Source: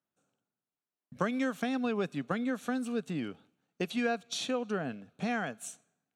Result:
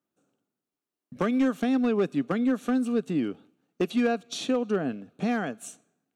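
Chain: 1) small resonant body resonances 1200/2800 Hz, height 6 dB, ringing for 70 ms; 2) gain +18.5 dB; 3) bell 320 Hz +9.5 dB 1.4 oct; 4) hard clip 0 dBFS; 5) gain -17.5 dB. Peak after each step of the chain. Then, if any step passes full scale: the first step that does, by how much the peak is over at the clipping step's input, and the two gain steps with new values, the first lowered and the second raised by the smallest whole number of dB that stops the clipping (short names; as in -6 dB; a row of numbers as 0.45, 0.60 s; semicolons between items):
-15.0, +3.5, +6.0, 0.0, -17.5 dBFS; step 2, 6.0 dB; step 2 +12.5 dB, step 5 -11.5 dB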